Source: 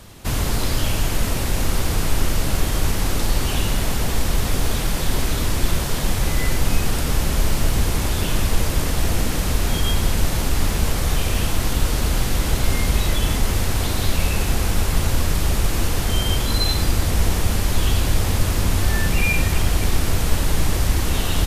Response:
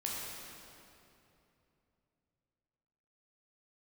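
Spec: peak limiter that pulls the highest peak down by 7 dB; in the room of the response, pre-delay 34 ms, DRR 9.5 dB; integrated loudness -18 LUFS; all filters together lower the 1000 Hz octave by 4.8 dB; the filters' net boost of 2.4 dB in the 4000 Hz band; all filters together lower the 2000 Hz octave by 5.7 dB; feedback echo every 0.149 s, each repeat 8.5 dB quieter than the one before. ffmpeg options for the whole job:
-filter_complex "[0:a]equalizer=f=1k:t=o:g=-4.5,equalizer=f=2k:t=o:g=-8,equalizer=f=4k:t=o:g=5.5,alimiter=limit=-10dB:level=0:latency=1,aecho=1:1:149|298|447|596:0.376|0.143|0.0543|0.0206,asplit=2[a][b];[1:a]atrim=start_sample=2205,adelay=34[c];[b][c]afir=irnorm=-1:irlink=0,volume=-12.5dB[d];[a][d]amix=inputs=2:normalize=0,volume=3.5dB"

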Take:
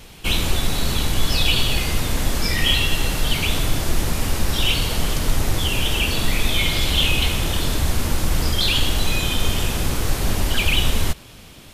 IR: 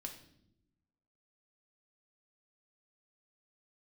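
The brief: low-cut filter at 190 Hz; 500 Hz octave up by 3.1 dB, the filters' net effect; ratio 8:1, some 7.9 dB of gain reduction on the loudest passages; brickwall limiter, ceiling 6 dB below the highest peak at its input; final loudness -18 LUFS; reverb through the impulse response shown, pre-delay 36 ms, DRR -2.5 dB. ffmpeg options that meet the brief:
-filter_complex "[0:a]highpass=190,equalizer=f=500:t=o:g=4,acompressor=threshold=-24dB:ratio=8,alimiter=limit=-20dB:level=0:latency=1,asplit=2[a][b];[1:a]atrim=start_sample=2205,adelay=36[c];[b][c]afir=irnorm=-1:irlink=0,volume=6dB[d];[a][d]amix=inputs=2:normalize=0,volume=5.5dB"

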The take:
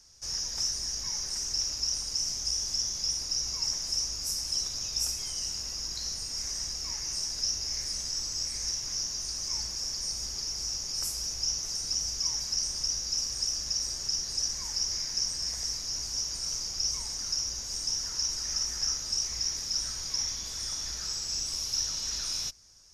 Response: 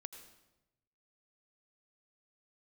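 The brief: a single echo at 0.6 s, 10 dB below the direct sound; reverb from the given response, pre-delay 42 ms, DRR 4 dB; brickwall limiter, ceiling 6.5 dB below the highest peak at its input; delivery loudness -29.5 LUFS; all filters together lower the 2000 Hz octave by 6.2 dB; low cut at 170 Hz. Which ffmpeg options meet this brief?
-filter_complex "[0:a]highpass=170,equalizer=f=2k:t=o:g=-8,alimiter=limit=-23.5dB:level=0:latency=1,aecho=1:1:600:0.316,asplit=2[a][b];[1:a]atrim=start_sample=2205,adelay=42[c];[b][c]afir=irnorm=-1:irlink=0,volume=0.5dB[d];[a][d]amix=inputs=2:normalize=0"

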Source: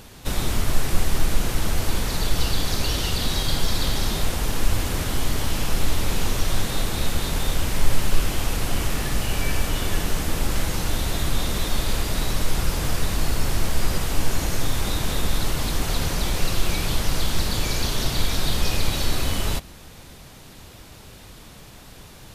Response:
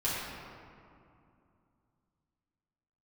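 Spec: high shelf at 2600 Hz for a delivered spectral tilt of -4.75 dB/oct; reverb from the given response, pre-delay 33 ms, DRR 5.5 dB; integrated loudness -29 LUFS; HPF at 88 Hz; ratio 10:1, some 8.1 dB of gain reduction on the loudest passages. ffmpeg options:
-filter_complex "[0:a]highpass=88,highshelf=f=2.6k:g=-8,acompressor=threshold=-33dB:ratio=10,asplit=2[a][b];[1:a]atrim=start_sample=2205,adelay=33[c];[b][c]afir=irnorm=-1:irlink=0,volume=-13.5dB[d];[a][d]amix=inputs=2:normalize=0,volume=7dB"

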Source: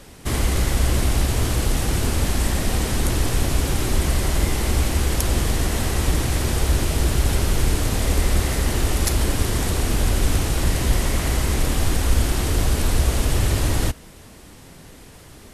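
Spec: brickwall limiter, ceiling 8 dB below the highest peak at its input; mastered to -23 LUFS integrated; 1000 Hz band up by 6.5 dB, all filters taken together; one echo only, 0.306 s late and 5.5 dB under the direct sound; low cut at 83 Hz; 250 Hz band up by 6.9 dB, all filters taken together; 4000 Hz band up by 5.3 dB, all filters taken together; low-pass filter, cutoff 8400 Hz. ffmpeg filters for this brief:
-af "highpass=83,lowpass=8.4k,equalizer=f=250:t=o:g=8.5,equalizer=f=1k:t=o:g=7.5,equalizer=f=4k:t=o:g=6.5,alimiter=limit=-13.5dB:level=0:latency=1,aecho=1:1:306:0.531,volume=-1dB"

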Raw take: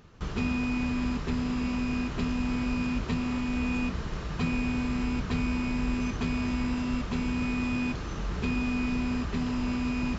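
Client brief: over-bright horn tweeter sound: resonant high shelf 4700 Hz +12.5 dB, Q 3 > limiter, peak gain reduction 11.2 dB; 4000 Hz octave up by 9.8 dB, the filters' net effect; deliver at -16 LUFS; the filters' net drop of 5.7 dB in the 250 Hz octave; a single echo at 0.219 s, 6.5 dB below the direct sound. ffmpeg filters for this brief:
-af "equalizer=f=250:t=o:g=-6,equalizer=f=4k:t=o:g=8,highshelf=f=4.7k:t=q:w=3:g=12.5,aecho=1:1:219:0.473,volume=20dB,alimiter=limit=-7.5dB:level=0:latency=1"

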